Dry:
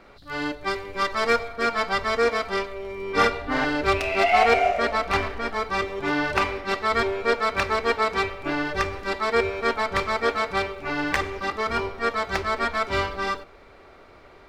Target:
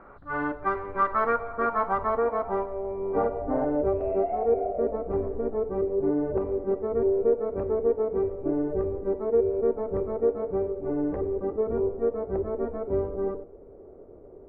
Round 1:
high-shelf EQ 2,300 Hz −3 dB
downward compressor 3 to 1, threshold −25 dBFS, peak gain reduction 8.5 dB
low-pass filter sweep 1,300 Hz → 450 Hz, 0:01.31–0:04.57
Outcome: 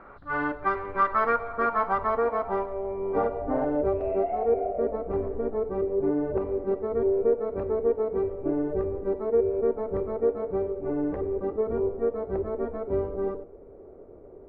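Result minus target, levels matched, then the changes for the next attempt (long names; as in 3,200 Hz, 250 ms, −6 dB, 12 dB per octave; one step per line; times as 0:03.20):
4,000 Hz band +5.5 dB
change: high-shelf EQ 2,300 Hz −12.5 dB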